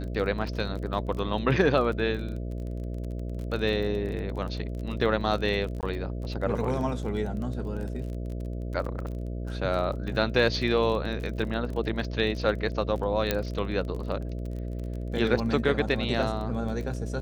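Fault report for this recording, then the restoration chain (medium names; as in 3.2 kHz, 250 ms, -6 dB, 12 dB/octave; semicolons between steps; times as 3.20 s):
buzz 60 Hz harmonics 11 -33 dBFS
crackle 26 per s -34 dBFS
5.81–5.83 s: dropout 18 ms
13.31 s: pop -9 dBFS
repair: de-click; de-hum 60 Hz, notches 11; interpolate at 5.81 s, 18 ms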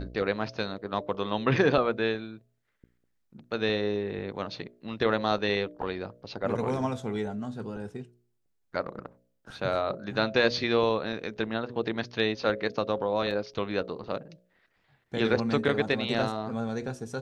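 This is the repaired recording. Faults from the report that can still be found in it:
13.31 s: pop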